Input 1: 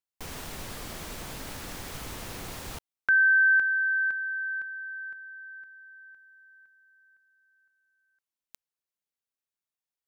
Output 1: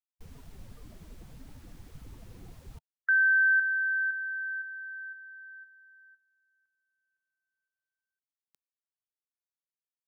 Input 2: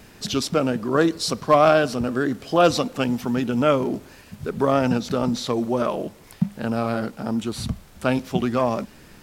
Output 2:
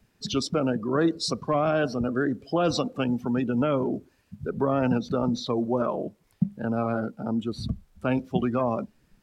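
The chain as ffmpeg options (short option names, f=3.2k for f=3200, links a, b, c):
-filter_complex "[0:a]afftdn=nr=18:nf=-32,acrossover=split=320[a][b];[b]alimiter=limit=-15dB:level=0:latency=1:release=39[c];[a][c]amix=inputs=2:normalize=0,volume=-2.5dB"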